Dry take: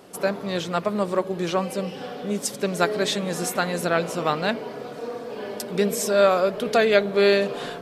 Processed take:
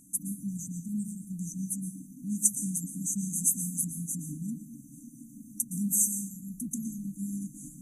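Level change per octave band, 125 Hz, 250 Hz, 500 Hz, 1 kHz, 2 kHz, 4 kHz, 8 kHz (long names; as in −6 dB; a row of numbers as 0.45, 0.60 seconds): −4.5 dB, −5.5 dB, below −40 dB, below −40 dB, below −40 dB, below −40 dB, +5.0 dB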